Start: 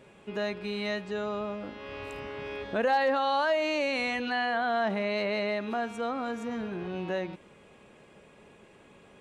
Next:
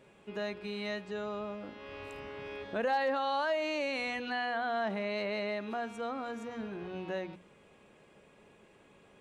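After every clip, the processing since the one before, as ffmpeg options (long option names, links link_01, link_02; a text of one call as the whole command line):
ffmpeg -i in.wav -af "bandreject=frequency=60:width_type=h:width=6,bandreject=frequency=120:width_type=h:width=6,bandreject=frequency=180:width_type=h:width=6,bandreject=frequency=240:width_type=h:width=6,volume=-5dB" out.wav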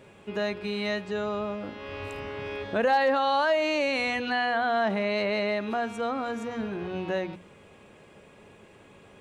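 ffmpeg -i in.wav -af "equalizer=frequency=96:width_type=o:width=0.46:gain=7.5,volume=7.5dB" out.wav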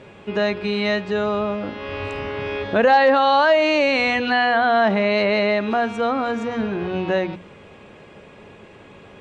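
ffmpeg -i in.wav -af "lowpass=5300,volume=8.5dB" out.wav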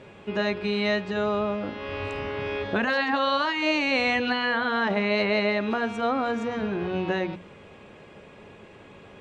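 ffmpeg -i in.wav -af "afftfilt=real='re*lt(hypot(re,im),1)':imag='im*lt(hypot(re,im),1)':win_size=1024:overlap=0.75,volume=-3.5dB" out.wav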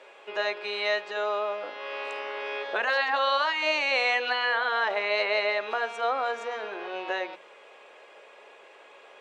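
ffmpeg -i in.wav -af "highpass=frequency=490:width=0.5412,highpass=frequency=490:width=1.3066" out.wav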